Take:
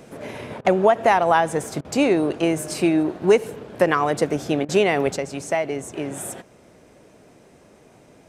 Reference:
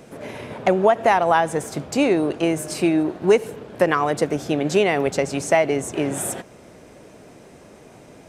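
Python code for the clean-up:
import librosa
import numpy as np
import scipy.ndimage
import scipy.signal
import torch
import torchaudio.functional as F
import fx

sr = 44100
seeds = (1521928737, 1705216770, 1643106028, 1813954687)

y = fx.fix_interpolate(x, sr, at_s=(0.61, 1.81, 4.65), length_ms=36.0)
y = fx.gain(y, sr, db=fx.steps((0.0, 0.0), (5.16, 5.5)))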